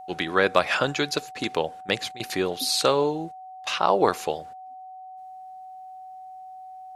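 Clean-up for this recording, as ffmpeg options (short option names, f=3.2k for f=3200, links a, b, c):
-af "bandreject=f=750:w=30"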